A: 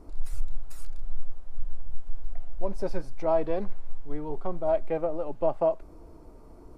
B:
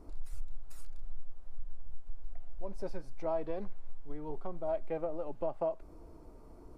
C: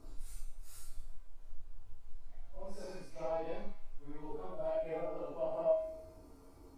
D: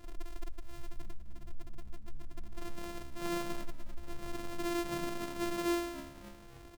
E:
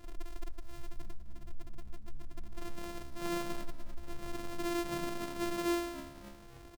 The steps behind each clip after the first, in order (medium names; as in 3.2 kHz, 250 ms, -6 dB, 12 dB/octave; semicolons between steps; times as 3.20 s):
compression 2:1, threshold -29 dBFS, peak gain reduction 8 dB; trim -4 dB
phase randomisation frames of 200 ms; treble shelf 2 kHz +9.5 dB; feedback comb 91 Hz, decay 0.82 s, harmonics odd, mix 80%; trim +8 dB
sorted samples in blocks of 128 samples; frequency-shifting echo 282 ms, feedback 56%, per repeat -71 Hz, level -21.5 dB; saturation -30.5 dBFS, distortion -16 dB; trim +3 dB
speakerphone echo 290 ms, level -18 dB